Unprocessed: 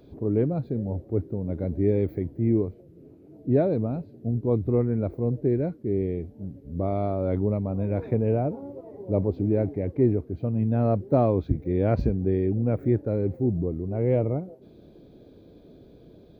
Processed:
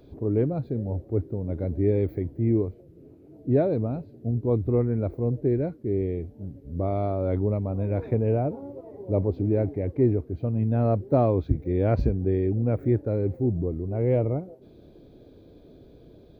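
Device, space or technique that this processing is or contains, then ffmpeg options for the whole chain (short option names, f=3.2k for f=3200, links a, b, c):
low shelf boost with a cut just above: -af "lowshelf=f=68:g=5,equalizer=f=190:t=o:w=0.51:g=-4"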